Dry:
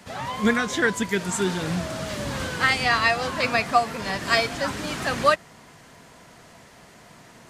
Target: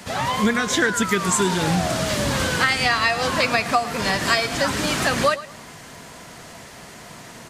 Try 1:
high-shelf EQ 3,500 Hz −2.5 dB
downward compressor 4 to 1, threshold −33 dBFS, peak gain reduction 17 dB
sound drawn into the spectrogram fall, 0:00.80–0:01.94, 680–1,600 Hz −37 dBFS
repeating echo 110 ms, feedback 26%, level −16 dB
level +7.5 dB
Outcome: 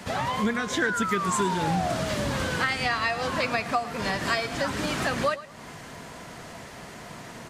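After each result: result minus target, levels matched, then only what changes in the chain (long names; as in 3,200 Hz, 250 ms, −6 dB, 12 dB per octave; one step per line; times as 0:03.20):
downward compressor: peak gain reduction +6 dB; 8,000 Hz band −4.0 dB
change: downward compressor 4 to 1, threshold −24.5 dBFS, peak gain reduction 10.5 dB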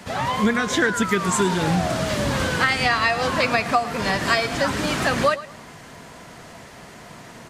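8,000 Hz band −4.0 dB
change: high-shelf EQ 3,500 Hz +4 dB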